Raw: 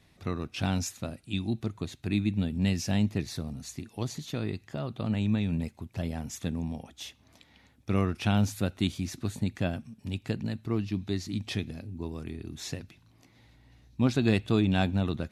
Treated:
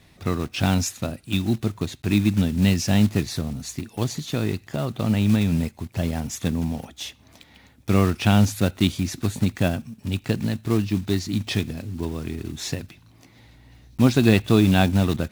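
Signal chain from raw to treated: block floating point 5-bit; gain +8 dB

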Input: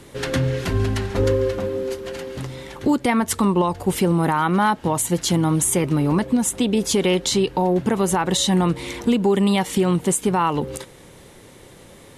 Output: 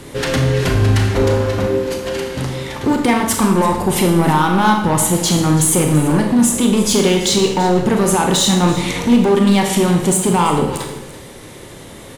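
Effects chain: in parallel at +3 dB: limiter -17 dBFS, peak gain reduction 8.5 dB; on the sum: hard clip -11 dBFS, distortion -15 dB; echo 0.335 s -15.5 dB; Schroeder reverb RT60 0.75 s, combs from 26 ms, DRR 2.5 dB

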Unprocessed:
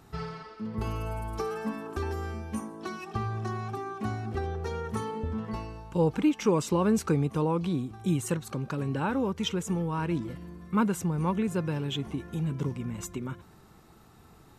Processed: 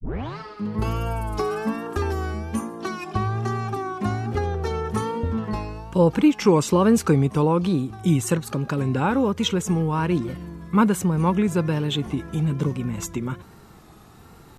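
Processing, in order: tape start at the beginning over 0.39 s; vibrato 1.2 Hz 79 cents; gain +7.5 dB

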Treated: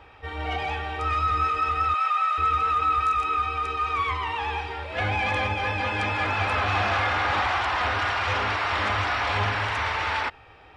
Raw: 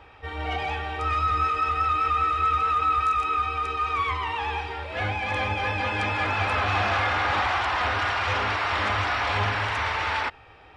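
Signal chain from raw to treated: 1.94–2.38 steep high-pass 520 Hz 96 dB/oct; 4.98–5.47 fast leveller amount 100%

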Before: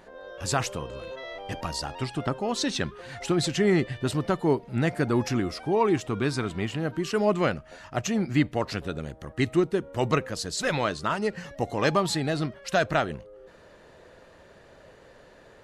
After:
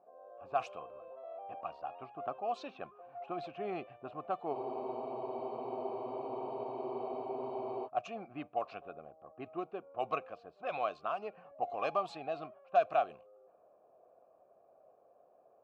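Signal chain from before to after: vowel filter a; low-pass opened by the level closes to 650 Hz, open at -31 dBFS; spectral freeze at 4.55, 3.30 s; gain +1 dB

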